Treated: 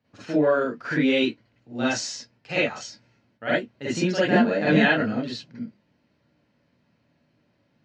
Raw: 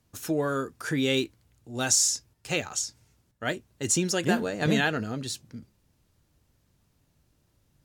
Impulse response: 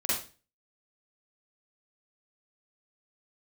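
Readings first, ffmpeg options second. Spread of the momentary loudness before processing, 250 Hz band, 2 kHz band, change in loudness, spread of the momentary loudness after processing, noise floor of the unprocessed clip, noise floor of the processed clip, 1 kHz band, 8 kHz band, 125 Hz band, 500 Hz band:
13 LU, +6.5 dB, +6.0 dB, +3.5 dB, 18 LU, -70 dBFS, -69 dBFS, +5.0 dB, -12.0 dB, +1.5 dB, +6.5 dB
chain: -filter_complex "[0:a]highpass=140,equalizer=f=370:t=q:w=4:g=-6,equalizer=f=1100:t=q:w=4:g=-5,equalizer=f=3500:t=q:w=4:g=-6,lowpass=f=4000:w=0.5412,lowpass=f=4000:w=1.3066[s0];[1:a]atrim=start_sample=2205,atrim=end_sample=3528[s1];[s0][s1]afir=irnorm=-1:irlink=0"

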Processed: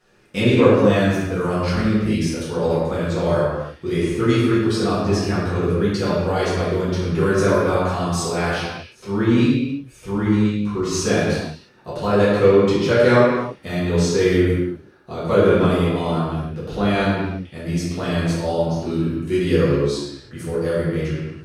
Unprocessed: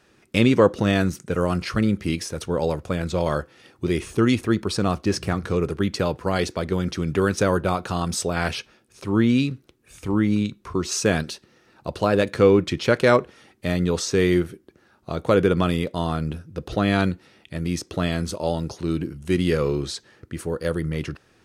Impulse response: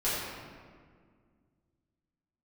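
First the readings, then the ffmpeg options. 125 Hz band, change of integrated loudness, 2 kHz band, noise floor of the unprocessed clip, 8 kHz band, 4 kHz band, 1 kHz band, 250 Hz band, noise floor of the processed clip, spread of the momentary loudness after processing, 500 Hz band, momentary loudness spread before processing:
+4.0 dB, +3.5 dB, +2.5 dB, -60 dBFS, 0.0 dB, +1.5 dB, +3.0 dB, +3.0 dB, -48 dBFS, 12 LU, +4.5 dB, 12 LU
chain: -filter_complex "[1:a]atrim=start_sample=2205,afade=t=out:st=0.4:d=0.01,atrim=end_sample=18081[s0];[0:a][s0]afir=irnorm=-1:irlink=0,volume=0.473"

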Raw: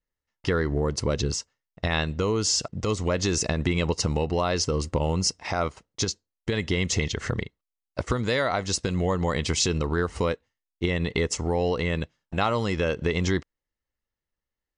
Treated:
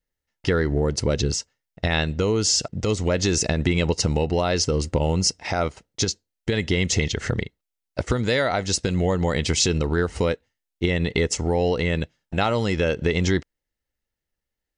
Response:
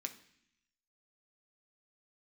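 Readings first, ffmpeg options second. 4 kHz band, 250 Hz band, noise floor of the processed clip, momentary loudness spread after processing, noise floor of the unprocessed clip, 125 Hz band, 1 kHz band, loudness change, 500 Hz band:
+3.5 dB, +3.5 dB, -84 dBFS, 7 LU, under -85 dBFS, +3.5 dB, +1.0 dB, +3.5 dB, +3.5 dB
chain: -af "equalizer=f=1100:t=o:w=0.32:g=-9,volume=1.5"

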